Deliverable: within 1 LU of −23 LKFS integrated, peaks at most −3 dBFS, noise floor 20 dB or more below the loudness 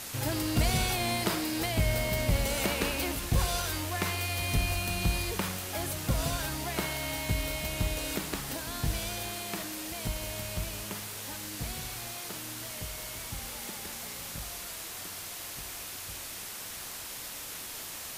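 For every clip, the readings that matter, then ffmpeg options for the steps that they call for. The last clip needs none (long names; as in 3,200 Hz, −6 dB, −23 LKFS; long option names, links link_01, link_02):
background noise floor −41 dBFS; target noise floor −53 dBFS; integrated loudness −32.5 LKFS; sample peak −16.5 dBFS; target loudness −23.0 LKFS
→ -af "afftdn=noise_reduction=12:noise_floor=-41"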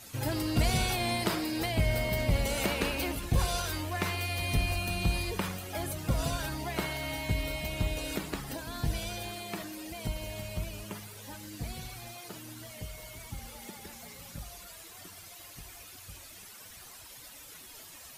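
background noise floor −50 dBFS; target noise floor −53 dBFS
→ -af "afftdn=noise_reduction=6:noise_floor=-50"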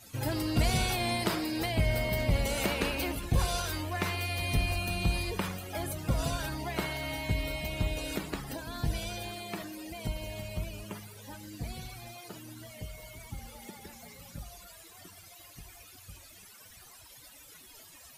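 background noise floor −53 dBFS; integrated loudness −33.0 LKFS; sample peak −17.0 dBFS; target loudness −23.0 LKFS
→ -af "volume=10dB"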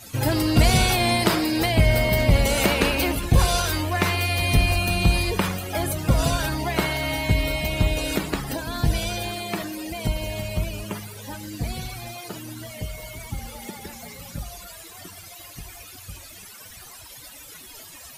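integrated loudness −23.0 LKFS; sample peak −7.0 dBFS; background noise floor −43 dBFS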